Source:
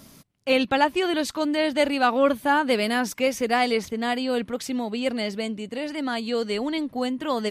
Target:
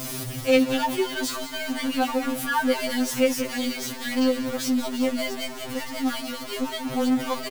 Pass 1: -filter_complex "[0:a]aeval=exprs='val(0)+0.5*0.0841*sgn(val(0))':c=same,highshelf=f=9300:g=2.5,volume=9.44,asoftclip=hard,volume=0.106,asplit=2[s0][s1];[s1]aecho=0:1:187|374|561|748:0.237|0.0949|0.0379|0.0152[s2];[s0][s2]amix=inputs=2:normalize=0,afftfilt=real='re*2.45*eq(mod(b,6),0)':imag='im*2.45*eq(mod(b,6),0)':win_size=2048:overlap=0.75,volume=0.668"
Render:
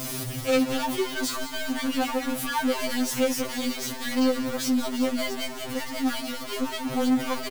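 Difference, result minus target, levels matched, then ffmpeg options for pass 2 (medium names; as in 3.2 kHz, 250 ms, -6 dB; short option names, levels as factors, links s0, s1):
overload inside the chain: distortion +13 dB
-filter_complex "[0:a]aeval=exprs='val(0)+0.5*0.0841*sgn(val(0))':c=same,highshelf=f=9300:g=2.5,volume=4.22,asoftclip=hard,volume=0.237,asplit=2[s0][s1];[s1]aecho=0:1:187|374|561|748:0.237|0.0949|0.0379|0.0152[s2];[s0][s2]amix=inputs=2:normalize=0,afftfilt=real='re*2.45*eq(mod(b,6),0)':imag='im*2.45*eq(mod(b,6),0)':win_size=2048:overlap=0.75,volume=0.668"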